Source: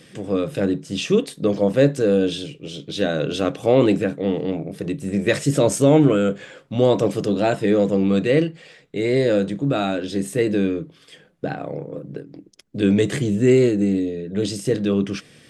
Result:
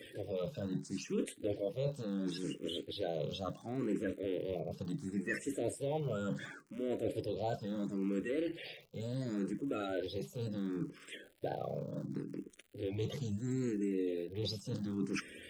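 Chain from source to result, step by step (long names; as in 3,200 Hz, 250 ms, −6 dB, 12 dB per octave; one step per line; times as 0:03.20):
spectral magnitudes quantised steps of 30 dB
reversed playback
downward compressor 5 to 1, threshold −33 dBFS, peak gain reduction 20 dB
reversed playback
surface crackle 130 per second −48 dBFS
frequency shifter mixed with the dry sound +0.71 Hz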